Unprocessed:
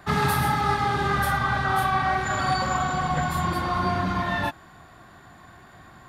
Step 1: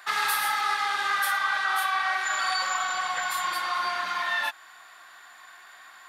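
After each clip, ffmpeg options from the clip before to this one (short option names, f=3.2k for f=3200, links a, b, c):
-filter_complex "[0:a]highpass=1.4k,asplit=2[a][b];[b]alimiter=level_in=2dB:limit=-24dB:level=0:latency=1:release=226,volume=-2dB,volume=-0.5dB[c];[a][c]amix=inputs=2:normalize=0"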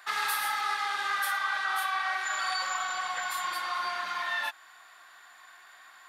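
-af "lowshelf=f=150:g=-6.5,volume=-4dB"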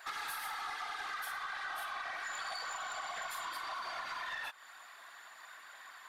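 -af "afftfilt=real='hypot(re,im)*cos(2*PI*random(0))':imag='hypot(re,im)*sin(2*PI*random(1))':win_size=512:overlap=0.75,acompressor=threshold=-43dB:ratio=5,aeval=exprs='(tanh(89.1*val(0)+0.05)-tanh(0.05))/89.1':c=same,volume=6dB"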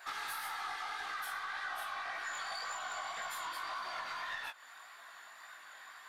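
-af "flanger=delay=16:depth=5.4:speed=1.8,volume=3dB"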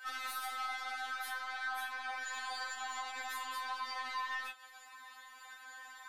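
-af "afftfilt=real='re*3.46*eq(mod(b,12),0)':imag='im*3.46*eq(mod(b,12),0)':win_size=2048:overlap=0.75,volume=2.5dB"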